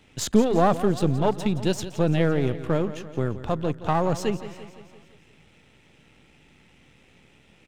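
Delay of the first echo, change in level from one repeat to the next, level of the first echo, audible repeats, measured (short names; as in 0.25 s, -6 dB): 0.171 s, -5.0 dB, -14.0 dB, 5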